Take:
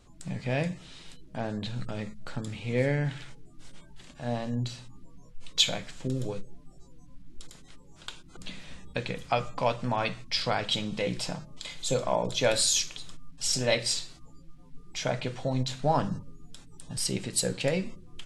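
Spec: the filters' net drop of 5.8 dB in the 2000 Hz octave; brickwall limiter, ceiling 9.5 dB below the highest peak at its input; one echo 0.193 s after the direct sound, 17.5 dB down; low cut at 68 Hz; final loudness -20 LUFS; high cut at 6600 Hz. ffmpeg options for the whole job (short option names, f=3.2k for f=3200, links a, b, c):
-af "highpass=68,lowpass=6.6k,equalizer=f=2k:t=o:g=-7.5,alimiter=limit=-19.5dB:level=0:latency=1,aecho=1:1:193:0.133,volume=13dB"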